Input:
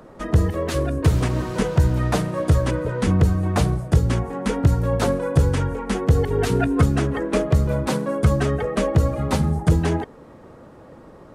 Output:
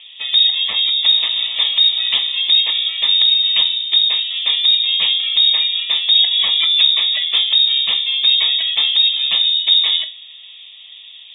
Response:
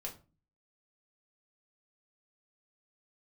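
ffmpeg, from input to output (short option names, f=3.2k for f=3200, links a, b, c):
-filter_complex "[0:a]highpass=50,asoftclip=type=tanh:threshold=-12dB,asuperstop=centerf=2300:order=4:qfactor=5.5,asplit=2[a][b];[1:a]atrim=start_sample=2205[c];[b][c]afir=irnorm=-1:irlink=0,volume=0dB[d];[a][d]amix=inputs=2:normalize=0,lowpass=f=3.2k:t=q:w=0.5098,lowpass=f=3.2k:t=q:w=0.6013,lowpass=f=3.2k:t=q:w=0.9,lowpass=f=3.2k:t=q:w=2.563,afreqshift=-3800,volume=1dB"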